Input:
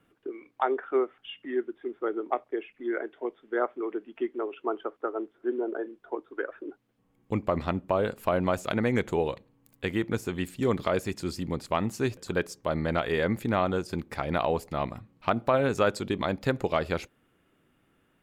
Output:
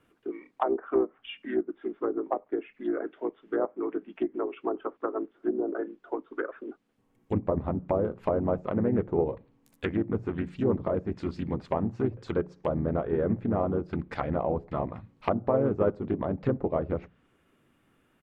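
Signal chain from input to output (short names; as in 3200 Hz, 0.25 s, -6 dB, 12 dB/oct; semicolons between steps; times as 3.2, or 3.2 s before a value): notches 60/120/180 Hz; treble ducked by the level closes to 740 Hz, closed at -25 dBFS; harmoniser -3 st -6 dB; Doppler distortion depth 0.21 ms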